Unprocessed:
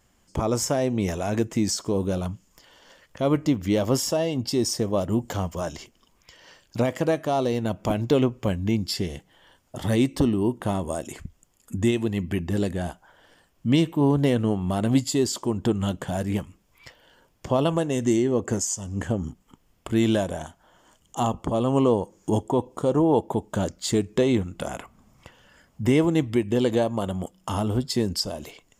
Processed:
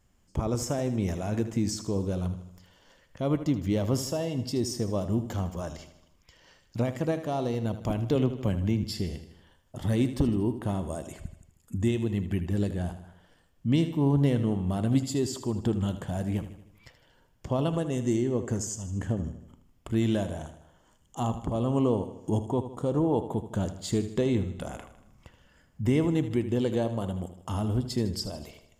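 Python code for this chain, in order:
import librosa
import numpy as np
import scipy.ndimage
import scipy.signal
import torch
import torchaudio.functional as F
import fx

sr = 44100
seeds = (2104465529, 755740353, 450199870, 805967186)

y = fx.low_shelf(x, sr, hz=200.0, db=9.0)
y = fx.echo_feedback(y, sr, ms=78, feedback_pct=53, wet_db=-12)
y = fx.band_squash(y, sr, depth_pct=40, at=(8.15, 8.84))
y = F.gain(torch.from_numpy(y), -8.0).numpy()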